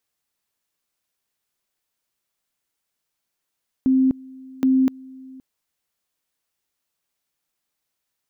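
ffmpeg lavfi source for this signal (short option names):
-f lavfi -i "aevalsrc='pow(10,(-13.5-24*gte(mod(t,0.77),0.25))/20)*sin(2*PI*262*t)':d=1.54:s=44100"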